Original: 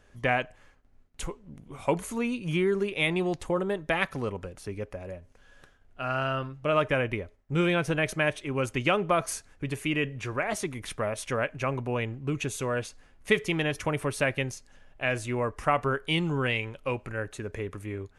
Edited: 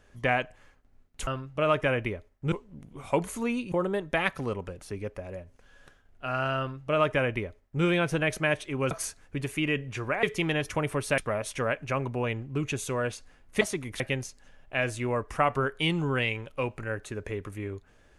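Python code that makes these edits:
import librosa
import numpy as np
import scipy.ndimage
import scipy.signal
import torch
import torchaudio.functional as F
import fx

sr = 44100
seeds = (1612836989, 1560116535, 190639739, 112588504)

y = fx.edit(x, sr, fx.cut(start_s=2.47, length_s=1.01),
    fx.duplicate(start_s=6.34, length_s=1.25, to_s=1.27),
    fx.cut(start_s=8.67, length_s=0.52),
    fx.swap(start_s=10.51, length_s=0.39, other_s=13.33, other_length_s=0.95), tone=tone)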